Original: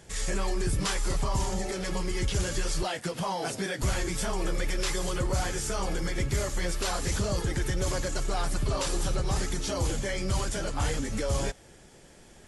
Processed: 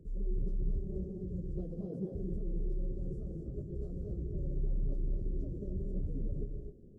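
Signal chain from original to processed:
inverse Chebyshev low-pass filter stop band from 820 Hz, stop band 40 dB
reversed playback
downward compressor 6 to 1, threshold −35 dBFS, peak gain reduction 11 dB
reversed playback
time stretch by phase vocoder 0.56×
reverb whose tail is shaped and stops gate 290 ms rising, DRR 2 dB
level +2 dB

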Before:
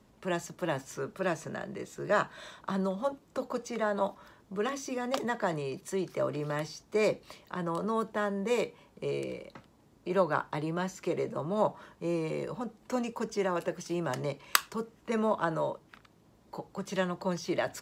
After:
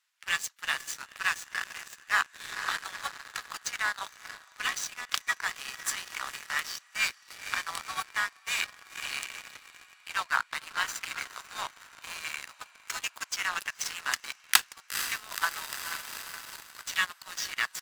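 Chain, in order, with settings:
inverse Chebyshev high-pass filter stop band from 440 Hz, stop band 60 dB
feedback delay with all-pass diffusion 475 ms, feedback 73%, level −10 dB
speech leveller within 3 dB 0.5 s
pitch-shifted copies added −7 semitones −11 dB, +3 semitones −14 dB, +4 semitones −17 dB
leveller curve on the samples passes 3

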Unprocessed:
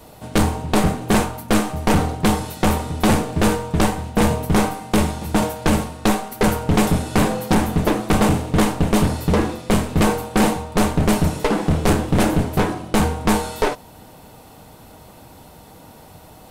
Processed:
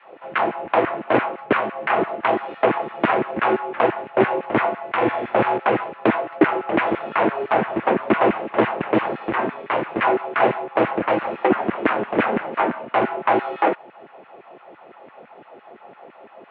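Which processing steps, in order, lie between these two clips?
0:04.97–0:05.58: flutter between parallel walls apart 7.3 metres, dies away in 0.8 s
auto-filter high-pass saw down 5.9 Hz 340–1,900 Hz
single-sideband voice off tune −91 Hz 230–2,800 Hz

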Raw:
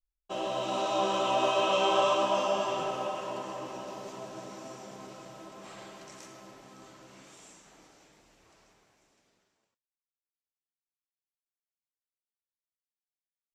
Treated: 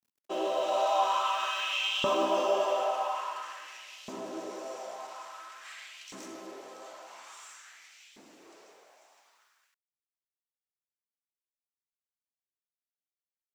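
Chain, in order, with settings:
mu-law and A-law mismatch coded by mu
auto-filter high-pass saw up 0.49 Hz 220–3,000 Hz
level −3 dB

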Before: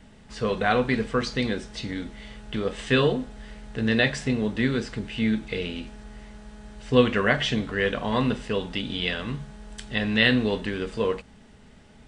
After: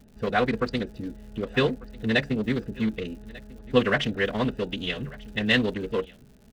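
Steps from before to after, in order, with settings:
adaptive Wiener filter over 41 samples
low-shelf EQ 410 Hz −5 dB
phase-vocoder stretch with locked phases 0.54×
in parallel at −5 dB: soft clipping −20.5 dBFS, distortion −12 dB
on the sum: surface crackle 160 per second −45 dBFS
on a send: single-tap delay 1,194 ms −21.5 dB

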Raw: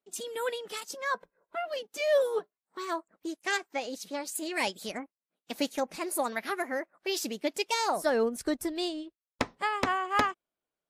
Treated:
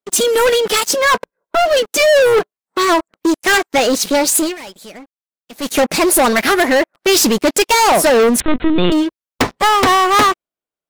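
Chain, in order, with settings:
leveller curve on the samples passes 5
0:04.37–0:05.77: duck −20.5 dB, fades 0.19 s
0:08.40–0:08.92: linear-prediction vocoder at 8 kHz pitch kept
level +8 dB

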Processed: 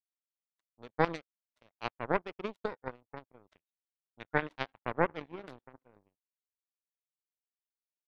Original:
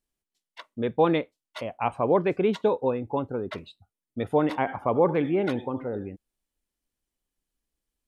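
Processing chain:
power curve on the samples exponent 3
gain on a spectral selection 0:03.54–0:04.46, 1,400–3,900 Hz +8 dB

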